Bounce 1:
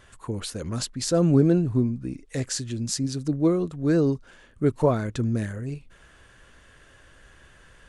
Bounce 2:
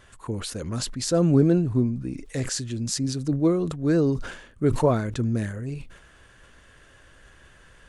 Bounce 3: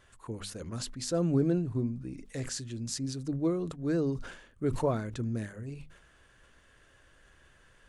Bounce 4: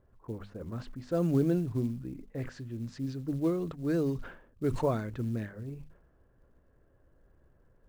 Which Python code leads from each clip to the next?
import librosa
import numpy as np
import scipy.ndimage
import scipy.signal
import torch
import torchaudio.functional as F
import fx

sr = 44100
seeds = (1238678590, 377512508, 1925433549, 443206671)

y1 = fx.sustainer(x, sr, db_per_s=78.0)
y2 = fx.hum_notches(y1, sr, base_hz=50, count=5)
y2 = F.gain(torch.from_numpy(y2), -8.0).numpy()
y3 = fx.env_lowpass(y2, sr, base_hz=560.0, full_db=-24.0)
y3 = fx.quant_float(y3, sr, bits=4)